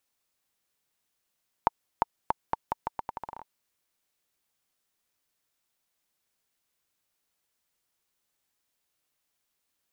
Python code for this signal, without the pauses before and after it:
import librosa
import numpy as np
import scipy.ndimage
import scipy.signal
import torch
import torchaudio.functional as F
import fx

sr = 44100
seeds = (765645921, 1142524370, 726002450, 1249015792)

y = fx.bouncing_ball(sr, first_gap_s=0.35, ratio=0.81, hz=909.0, decay_ms=21.0, level_db=-7.0)